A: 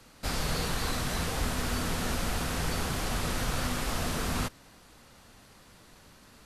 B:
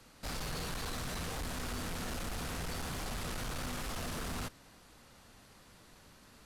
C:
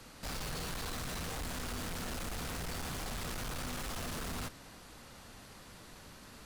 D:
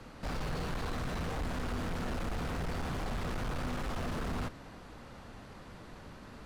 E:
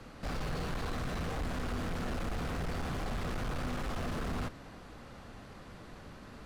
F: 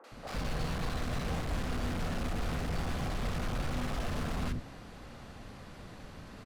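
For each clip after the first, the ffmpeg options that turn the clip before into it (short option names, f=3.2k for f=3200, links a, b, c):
-af "asoftclip=type=tanh:threshold=-31.5dB,volume=-3.5dB"
-af "aeval=exprs='0.0188*(cos(1*acos(clip(val(0)/0.0188,-1,1)))-cos(1*PI/2))+0.00376*(cos(5*acos(clip(val(0)/0.0188,-1,1)))-cos(5*PI/2))':c=same"
-af "lowpass=f=1.4k:p=1,volume=5.5dB"
-af "bandreject=f=920:w=20"
-filter_complex "[0:a]acrossover=split=380|1300[a][b][c];[c]adelay=40[d];[a]adelay=110[e];[e][b][d]amix=inputs=3:normalize=0,volume=2.5dB"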